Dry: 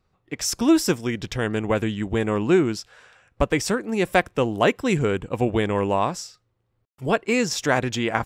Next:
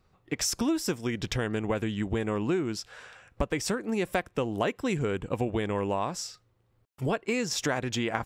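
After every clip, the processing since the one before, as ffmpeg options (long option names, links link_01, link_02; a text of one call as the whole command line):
ffmpeg -i in.wav -af "acompressor=threshold=-30dB:ratio=4,volume=3dB" out.wav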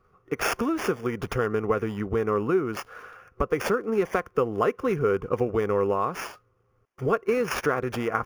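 ffmpeg -i in.wav -filter_complex "[0:a]superequalizer=7b=2.51:10b=3.16:14b=1.58:15b=0.316:16b=3.55,acrossover=split=3000[link_01][link_02];[link_02]acrusher=samples=11:mix=1:aa=0.000001[link_03];[link_01][link_03]amix=inputs=2:normalize=0" out.wav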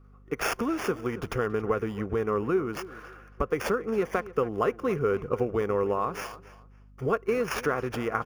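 ffmpeg -i in.wav -filter_complex "[0:a]aeval=exprs='val(0)+0.00316*(sin(2*PI*50*n/s)+sin(2*PI*2*50*n/s)/2+sin(2*PI*3*50*n/s)/3+sin(2*PI*4*50*n/s)/4+sin(2*PI*5*50*n/s)/5)':channel_layout=same,asplit=2[link_01][link_02];[link_02]adelay=278,lowpass=frequency=4100:poles=1,volume=-16.5dB,asplit=2[link_03][link_04];[link_04]adelay=278,lowpass=frequency=4100:poles=1,volume=0.23[link_05];[link_01][link_03][link_05]amix=inputs=3:normalize=0,volume=-2.5dB" out.wav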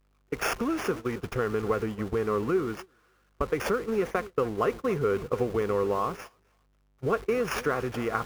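ffmpeg -i in.wav -af "aeval=exprs='val(0)+0.5*0.0133*sgn(val(0))':channel_layout=same,agate=range=-25dB:threshold=-31dB:ratio=16:detection=peak,volume=-1dB" out.wav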